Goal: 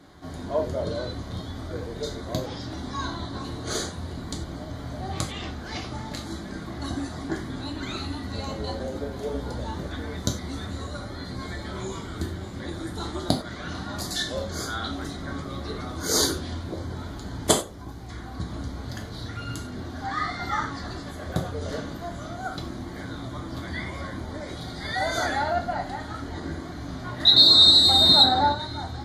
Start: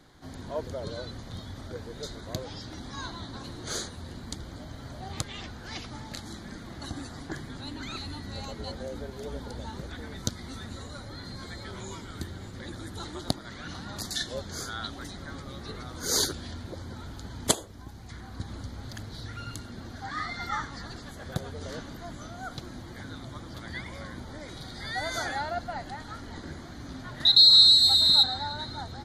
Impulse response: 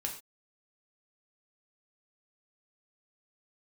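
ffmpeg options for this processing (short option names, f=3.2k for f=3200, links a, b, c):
-filter_complex "[0:a]asetnsamples=n=441:p=0,asendcmd='27.32 equalizer g 15;28.52 equalizer g 2.5',equalizer=f=450:w=0.37:g=5.5[a];[1:a]atrim=start_sample=2205,asetrate=57330,aresample=44100[b];[a][b]afir=irnorm=-1:irlink=0,volume=4dB"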